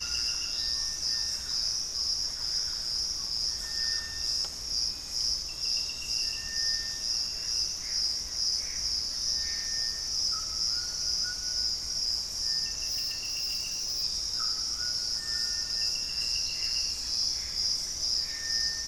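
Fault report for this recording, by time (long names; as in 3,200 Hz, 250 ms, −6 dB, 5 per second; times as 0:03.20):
0:12.87–0:14.04: clipping −28.5 dBFS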